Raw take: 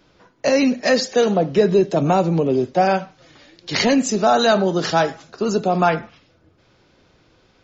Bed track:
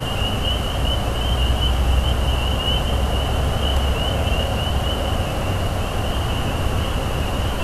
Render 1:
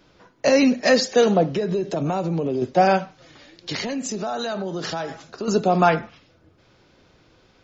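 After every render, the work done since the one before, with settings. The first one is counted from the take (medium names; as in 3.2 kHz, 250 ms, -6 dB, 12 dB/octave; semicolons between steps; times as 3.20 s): 1.50–2.62 s: compression, threshold -20 dBFS; 3.72–5.48 s: compression 5:1, threshold -25 dBFS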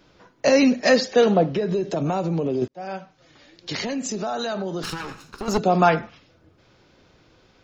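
0.96–1.66 s: low-pass 4.8 kHz; 2.68–3.85 s: fade in; 4.83–5.58 s: comb filter that takes the minimum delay 0.75 ms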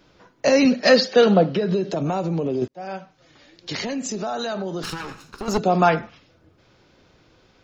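0.65–1.92 s: cabinet simulation 110–6500 Hz, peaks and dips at 190 Hz +5 dB, 530 Hz +3 dB, 1.4 kHz +6 dB, 3 kHz +4 dB, 4.4 kHz +7 dB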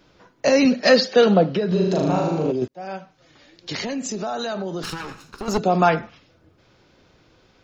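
1.68–2.52 s: flutter echo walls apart 6.6 m, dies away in 1 s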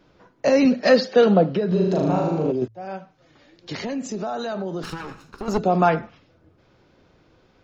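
treble shelf 2.2 kHz -8 dB; de-hum 55.65 Hz, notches 2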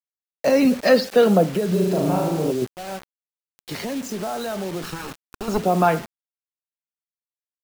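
bit crusher 6-bit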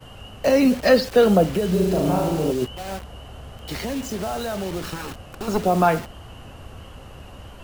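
add bed track -19 dB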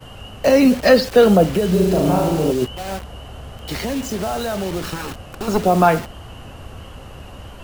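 trim +4 dB; peak limiter -2 dBFS, peak gain reduction 1.5 dB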